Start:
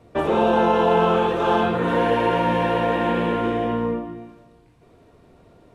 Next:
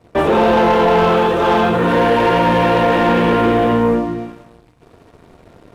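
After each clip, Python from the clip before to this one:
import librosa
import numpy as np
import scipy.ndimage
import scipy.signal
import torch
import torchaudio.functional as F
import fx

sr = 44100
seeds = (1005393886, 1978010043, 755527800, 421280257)

y = fx.rider(x, sr, range_db=10, speed_s=2.0)
y = fx.leveller(y, sr, passes=2)
y = F.gain(torch.from_numpy(y), 1.5).numpy()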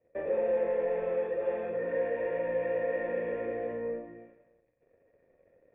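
y = fx.formant_cascade(x, sr, vowel='e')
y = fx.comb_fb(y, sr, f0_hz=550.0, decay_s=0.48, harmonics='all', damping=0.0, mix_pct=70)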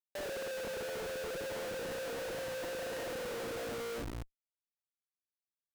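y = fx.schmitt(x, sr, flips_db=-42.5)
y = F.gain(torch.from_numpy(y), -6.5).numpy()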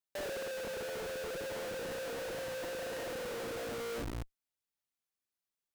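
y = fx.rider(x, sr, range_db=10, speed_s=0.5)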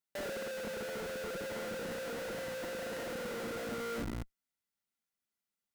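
y = fx.small_body(x, sr, hz=(210.0, 1400.0, 2000.0), ring_ms=45, db=9)
y = F.gain(torch.from_numpy(y), -1.0).numpy()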